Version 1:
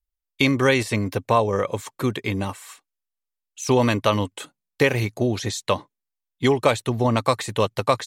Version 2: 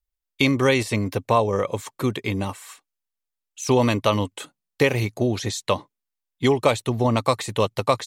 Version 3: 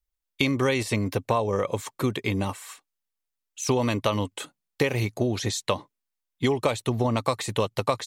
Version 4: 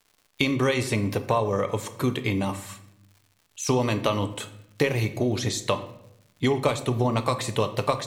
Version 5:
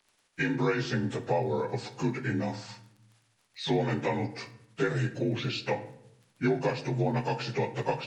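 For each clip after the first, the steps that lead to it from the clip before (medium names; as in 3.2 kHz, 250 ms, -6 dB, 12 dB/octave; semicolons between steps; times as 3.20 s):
dynamic bell 1.6 kHz, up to -5 dB, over -42 dBFS, Q 3.4
compression 4:1, threshold -20 dBFS, peak gain reduction 7 dB
crackle 170 per s -46 dBFS; reverberation RT60 0.80 s, pre-delay 7 ms, DRR 9 dB
frequency axis rescaled in octaves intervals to 85%; crackle 14 per s -44 dBFS; trim -3 dB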